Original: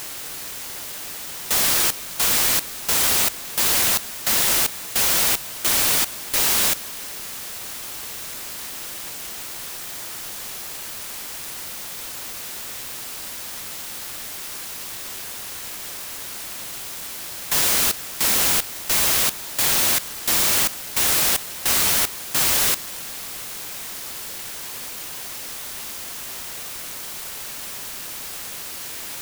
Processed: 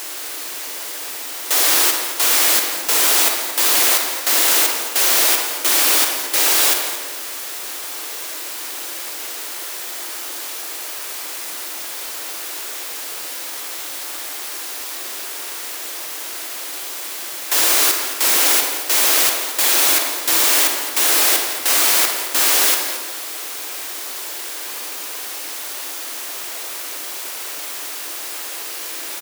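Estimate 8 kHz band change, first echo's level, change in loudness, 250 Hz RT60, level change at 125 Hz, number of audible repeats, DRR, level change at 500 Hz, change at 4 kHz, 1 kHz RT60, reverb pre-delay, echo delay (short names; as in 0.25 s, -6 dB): +4.0 dB, -14.0 dB, +4.5 dB, 1.2 s, under -35 dB, 2, 2.0 dB, +5.5 dB, +4.5 dB, 1.1 s, 38 ms, 0.168 s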